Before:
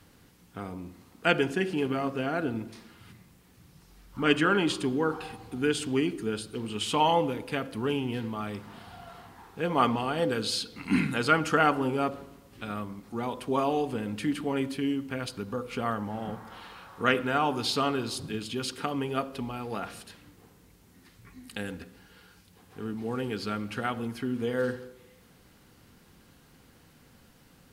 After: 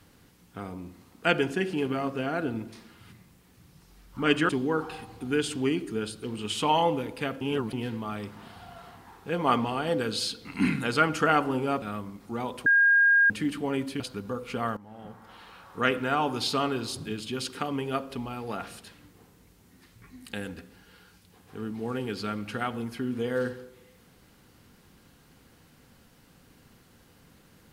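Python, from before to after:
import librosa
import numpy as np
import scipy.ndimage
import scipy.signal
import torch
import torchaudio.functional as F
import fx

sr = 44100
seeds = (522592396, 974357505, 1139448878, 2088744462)

y = fx.edit(x, sr, fx.cut(start_s=4.49, length_s=0.31),
    fx.reverse_span(start_s=7.72, length_s=0.32),
    fx.cut(start_s=12.13, length_s=0.52),
    fx.bleep(start_s=13.49, length_s=0.64, hz=1620.0, db=-16.5),
    fx.cut(start_s=14.83, length_s=0.4),
    fx.fade_in_from(start_s=16.0, length_s=1.5, curve='qsin', floor_db=-18.0), tone=tone)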